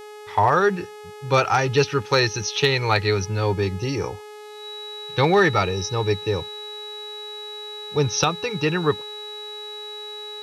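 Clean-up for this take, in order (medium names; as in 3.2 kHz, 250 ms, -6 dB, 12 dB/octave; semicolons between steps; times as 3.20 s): clip repair -8.5 dBFS; de-hum 421.1 Hz, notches 32; band-stop 3.9 kHz, Q 30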